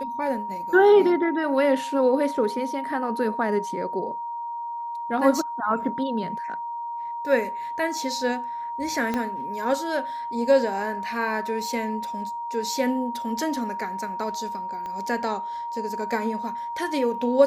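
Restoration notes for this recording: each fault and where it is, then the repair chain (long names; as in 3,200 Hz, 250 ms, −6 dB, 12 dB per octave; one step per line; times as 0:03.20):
whistle 940 Hz −29 dBFS
0:09.14: click −13 dBFS
0:14.86: click −23 dBFS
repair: click removal
notch filter 940 Hz, Q 30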